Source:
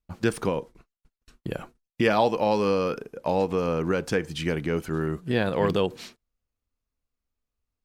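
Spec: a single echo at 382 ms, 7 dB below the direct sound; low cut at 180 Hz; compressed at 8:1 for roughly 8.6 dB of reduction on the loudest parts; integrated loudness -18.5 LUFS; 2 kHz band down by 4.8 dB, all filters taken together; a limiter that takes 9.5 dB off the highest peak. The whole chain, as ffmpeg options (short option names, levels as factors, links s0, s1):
-af "highpass=180,equalizer=f=2000:t=o:g=-6.5,acompressor=threshold=0.0447:ratio=8,alimiter=level_in=1.19:limit=0.0631:level=0:latency=1,volume=0.841,aecho=1:1:382:0.447,volume=7.94"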